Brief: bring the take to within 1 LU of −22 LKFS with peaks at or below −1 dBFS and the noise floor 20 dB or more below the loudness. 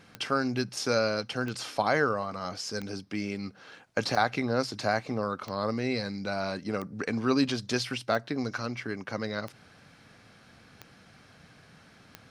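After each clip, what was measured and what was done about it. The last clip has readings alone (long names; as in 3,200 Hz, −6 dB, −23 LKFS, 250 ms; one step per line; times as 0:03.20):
number of clicks 10; integrated loudness −30.5 LKFS; sample peak −11.0 dBFS; target loudness −22.0 LKFS
→ click removal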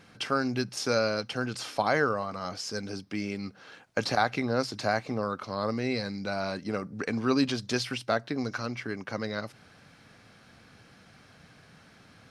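number of clicks 0; integrated loudness −30.5 LKFS; sample peak −11.0 dBFS; target loudness −22.0 LKFS
→ level +8.5 dB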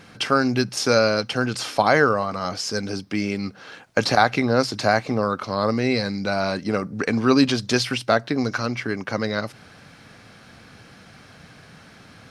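integrated loudness −22.0 LKFS; sample peak −2.5 dBFS; background noise floor −48 dBFS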